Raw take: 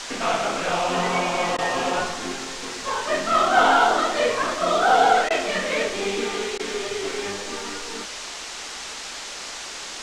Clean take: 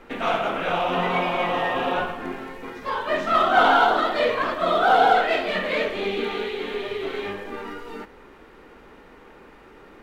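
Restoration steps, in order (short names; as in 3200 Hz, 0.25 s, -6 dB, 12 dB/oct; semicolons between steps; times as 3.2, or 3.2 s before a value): interpolate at 1.57/5.29/6.58, 13 ms; noise print and reduce 13 dB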